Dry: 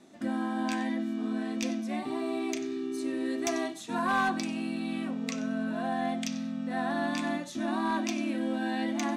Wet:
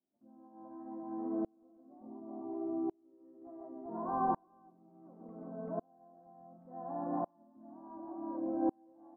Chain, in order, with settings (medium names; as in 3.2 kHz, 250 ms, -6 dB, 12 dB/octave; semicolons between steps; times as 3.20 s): steep low-pass 1 kHz 36 dB/octave; on a send: multi-tap echo 139/388 ms -4.5/-3.5 dB; on the sum: sawtooth tremolo in dB swelling 0.69 Hz, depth 36 dB